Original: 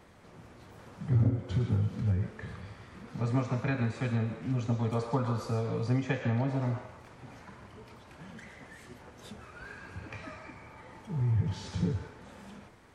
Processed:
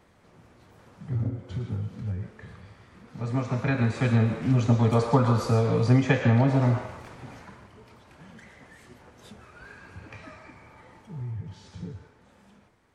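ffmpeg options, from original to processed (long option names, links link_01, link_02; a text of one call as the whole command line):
ffmpeg -i in.wav -af "volume=9dB,afade=type=in:start_time=3.11:duration=1.13:silence=0.251189,afade=type=out:start_time=6.9:duration=0.8:silence=0.316228,afade=type=out:start_time=10.83:duration=0.56:silence=0.446684" out.wav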